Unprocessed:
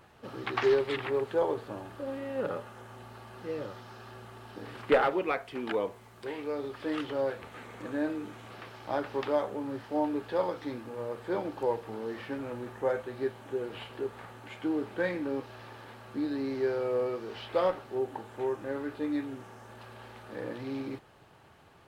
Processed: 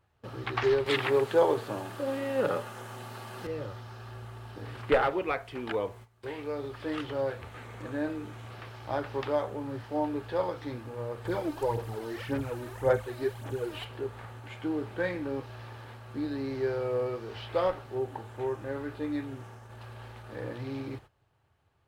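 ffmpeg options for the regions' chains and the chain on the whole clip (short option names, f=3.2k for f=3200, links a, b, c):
-filter_complex "[0:a]asettb=1/sr,asplit=3[a][b][c];[a]atrim=end=0.864[d];[b]atrim=start=0.86:end=3.47,asetpts=PTS-STARTPTS,afade=t=in:d=0.004:c=qsin,afade=t=out:st=2.606:d=0.004:c=qsin,highpass=f=140:w=0.5412,highpass=f=140:w=1.3066,acontrast=31,highshelf=f=3.8k:g=6.5[e];[c]atrim=start=3.466[f];[d][e]acrossfade=d=0.004:c1=hsin:c2=qsin[g];[g][f]acrossfade=d=0.004:c1=qsin:c2=hsin,asettb=1/sr,asplit=3[h][i][j];[h]atrim=end=11.254[k];[i]atrim=start=11.25:end=13.85,asetpts=PTS-STARTPTS,afade=t=in:d=0.004:c=qsin,afade=t=out:st=2.596:d=0.004:c=qsin,aemphasis=mode=production:type=cd,aphaser=in_gain=1:out_gain=1:delay=3.3:decay=0.58:speed=1.8:type=sinusoidal[l];[j]atrim=start=13.846[m];[k][l]acrossfade=d=0.004:c1=hsin:c2=qsin[n];[n][m]acrossfade=d=0.004:c1=qsin:c2=hsin,agate=range=-16dB:threshold=-49dB:ratio=16:detection=peak,lowshelf=f=140:t=q:w=1.5:g=8"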